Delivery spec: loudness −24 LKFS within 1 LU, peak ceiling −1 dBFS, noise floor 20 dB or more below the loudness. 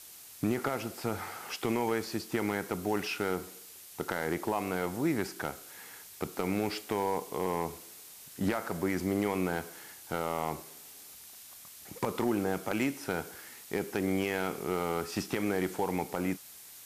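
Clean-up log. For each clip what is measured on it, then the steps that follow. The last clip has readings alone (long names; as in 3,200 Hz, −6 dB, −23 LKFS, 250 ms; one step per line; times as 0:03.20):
share of clipped samples 0.3%; peaks flattened at −20.5 dBFS; background noise floor −51 dBFS; target noise floor −54 dBFS; integrated loudness −33.5 LKFS; sample peak −20.5 dBFS; target loudness −24.0 LKFS
→ clipped peaks rebuilt −20.5 dBFS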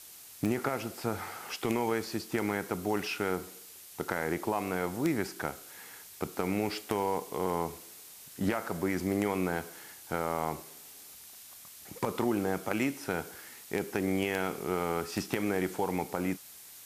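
share of clipped samples 0.0%; background noise floor −51 dBFS; target noise floor −53 dBFS
→ noise reduction from a noise print 6 dB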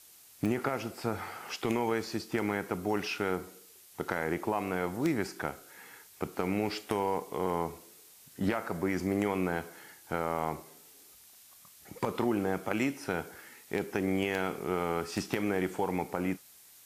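background noise floor −56 dBFS; integrated loudness −33.0 LKFS; sample peak −12.0 dBFS; target loudness −24.0 LKFS
→ level +9 dB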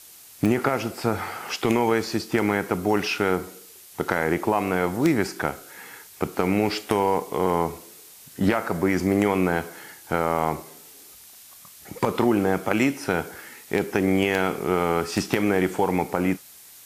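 integrated loudness −24.0 LKFS; sample peak −3.0 dBFS; background noise floor −47 dBFS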